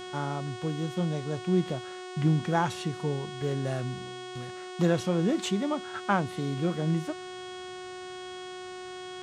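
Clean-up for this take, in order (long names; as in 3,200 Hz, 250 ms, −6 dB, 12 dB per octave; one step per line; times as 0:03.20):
hum removal 366.8 Hz, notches 25
notch filter 3,300 Hz, Q 30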